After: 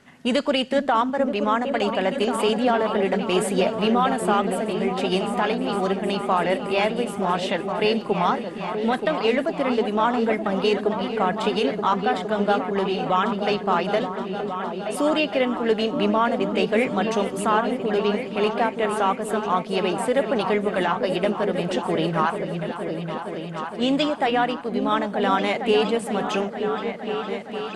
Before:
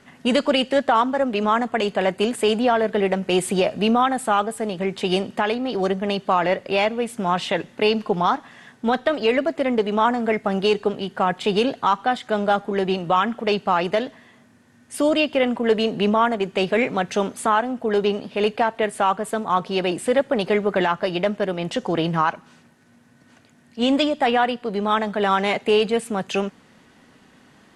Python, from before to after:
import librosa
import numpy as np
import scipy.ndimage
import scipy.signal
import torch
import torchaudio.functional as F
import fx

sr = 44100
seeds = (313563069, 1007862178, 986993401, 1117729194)

y = fx.echo_opening(x, sr, ms=463, hz=200, octaves=2, feedback_pct=70, wet_db=-3)
y = y * librosa.db_to_amplitude(-2.5)